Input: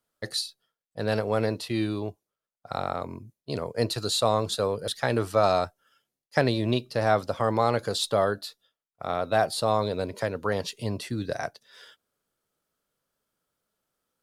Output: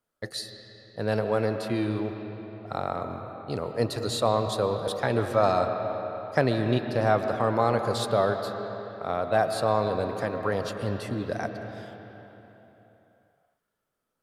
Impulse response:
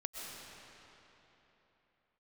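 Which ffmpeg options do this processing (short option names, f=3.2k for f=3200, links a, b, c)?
-filter_complex "[0:a]asplit=2[a][b];[1:a]atrim=start_sample=2205,lowpass=2.7k[c];[b][c]afir=irnorm=-1:irlink=0,volume=0dB[d];[a][d]amix=inputs=2:normalize=0,volume=-4.5dB"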